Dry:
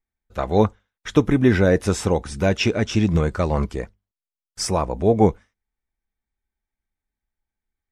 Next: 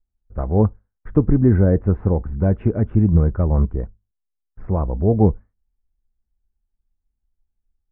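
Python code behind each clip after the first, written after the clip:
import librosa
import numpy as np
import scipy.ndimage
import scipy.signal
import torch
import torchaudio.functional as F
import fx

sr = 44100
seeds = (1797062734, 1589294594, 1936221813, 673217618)

y = scipy.signal.sosfilt(scipy.signal.cheby2(4, 70, 6900.0, 'lowpass', fs=sr, output='sos'), x)
y = fx.tilt_eq(y, sr, slope=-4.0)
y = F.gain(torch.from_numpy(y), -7.0).numpy()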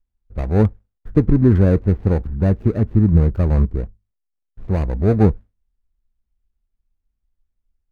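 y = scipy.ndimage.median_filter(x, 41, mode='constant')
y = F.gain(torch.from_numpy(y), 1.5).numpy()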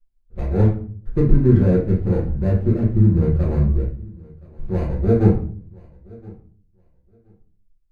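y = fx.echo_feedback(x, sr, ms=1021, feedback_pct=17, wet_db=-24.0)
y = fx.room_shoebox(y, sr, seeds[0], volume_m3=42.0, walls='mixed', distance_m=1.1)
y = F.gain(torch.from_numpy(y), -9.5).numpy()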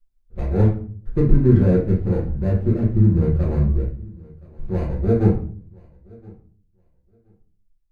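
y = fx.rider(x, sr, range_db=10, speed_s=2.0)
y = F.gain(torch.from_numpy(y), -1.0).numpy()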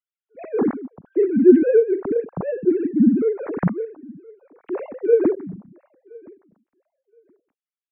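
y = fx.sine_speech(x, sr)
y = F.gain(torch.from_numpy(y), -1.5).numpy()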